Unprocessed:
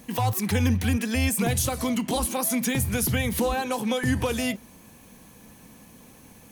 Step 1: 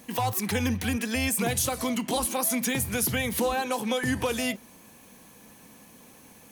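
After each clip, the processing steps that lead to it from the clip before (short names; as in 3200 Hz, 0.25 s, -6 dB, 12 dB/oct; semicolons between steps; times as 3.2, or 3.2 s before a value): low shelf 150 Hz -11 dB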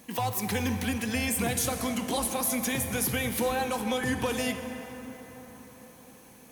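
plate-style reverb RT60 5 s, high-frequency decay 0.45×, DRR 6.5 dB; gain -2.5 dB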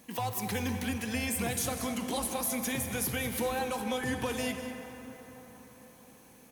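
echo 0.196 s -12.5 dB; gain -4 dB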